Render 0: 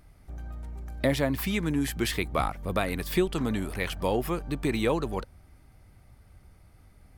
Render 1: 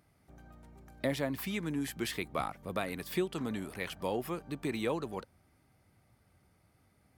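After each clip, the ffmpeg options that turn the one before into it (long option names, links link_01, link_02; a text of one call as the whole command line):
ffmpeg -i in.wav -af "highpass=120,volume=-7dB" out.wav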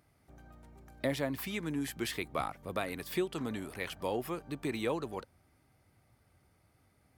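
ffmpeg -i in.wav -af "equalizer=frequency=190:width=4.1:gain=-4.5" out.wav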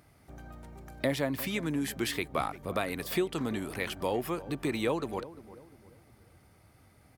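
ffmpeg -i in.wav -filter_complex "[0:a]asplit=2[link_01][link_02];[link_02]acompressor=threshold=-44dB:ratio=6,volume=1dB[link_03];[link_01][link_03]amix=inputs=2:normalize=0,asplit=2[link_04][link_05];[link_05]adelay=349,lowpass=frequency=930:poles=1,volume=-15dB,asplit=2[link_06][link_07];[link_07]adelay=349,lowpass=frequency=930:poles=1,volume=0.42,asplit=2[link_08][link_09];[link_09]adelay=349,lowpass=frequency=930:poles=1,volume=0.42,asplit=2[link_10][link_11];[link_11]adelay=349,lowpass=frequency=930:poles=1,volume=0.42[link_12];[link_04][link_06][link_08][link_10][link_12]amix=inputs=5:normalize=0,volume=1.5dB" out.wav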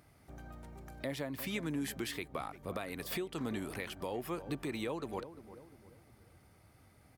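ffmpeg -i in.wav -af "alimiter=level_in=0.5dB:limit=-24dB:level=0:latency=1:release=403,volume=-0.5dB,volume=-2.5dB" out.wav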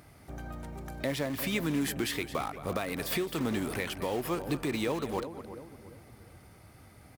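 ffmpeg -i in.wav -filter_complex "[0:a]aecho=1:1:218:0.178,asplit=2[link_01][link_02];[link_02]aeval=exprs='(mod(79.4*val(0)+1,2)-1)/79.4':channel_layout=same,volume=-12dB[link_03];[link_01][link_03]amix=inputs=2:normalize=0,volume=6.5dB" out.wav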